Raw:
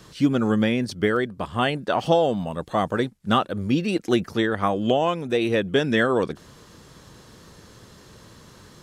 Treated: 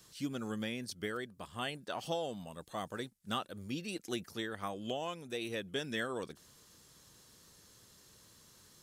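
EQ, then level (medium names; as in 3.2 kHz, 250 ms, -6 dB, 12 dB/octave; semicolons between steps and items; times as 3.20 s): pre-emphasis filter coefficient 0.8; -4.5 dB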